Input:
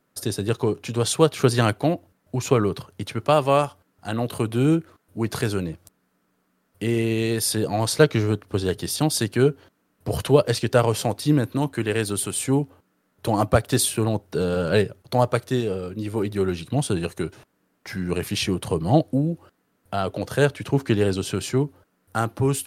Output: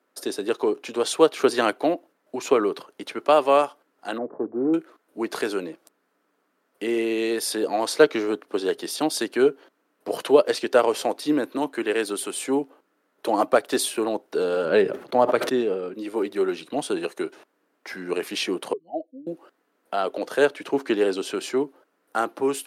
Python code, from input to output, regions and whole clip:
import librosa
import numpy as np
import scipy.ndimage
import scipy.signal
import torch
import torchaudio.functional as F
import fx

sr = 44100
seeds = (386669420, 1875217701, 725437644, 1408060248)

y = fx.chain(x, sr, fx.sample_sort(block=16),
    fx.gaussian_blur(sigma=9.4),
    fx.hum_notches(base_hz=50, count=3), at=(4.18, 4.74))
y = fx.chain(y, sr, fx.bass_treble(bass_db=7, treble_db=-8),
    fx.sustainer(db_per_s=76.0), at=(14.65, 15.94))
y = fx.chain(y, sr, fx.spec_expand(power=2.5),
    fx.highpass(hz=660.0, slope=12),
    fx.high_shelf_res(hz=1600.0, db=13.0, q=3.0), at=(18.73, 19.27))
y = scipy.signal.sosfilt(scipy.signal.butter(4, 290.0, 'highpass', fs=sr, output='sos'), y)
y = fx.high_shelf(y, sr, hz=4700.0, db=-8.0)
y = F.gain(torch.from_numpy(y), 1.5).numpy()